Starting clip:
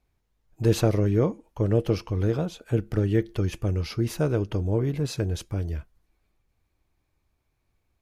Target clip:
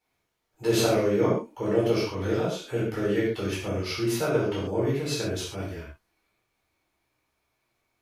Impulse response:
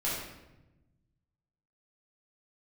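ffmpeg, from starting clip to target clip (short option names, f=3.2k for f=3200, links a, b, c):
-filter_complex "[0:a]highpass=f=630:p=1[a];[1:a]atrim=start_sample=2205,atrim=end_sample=6615[b];[a][b]afir=irnorm=-1:irlink=0"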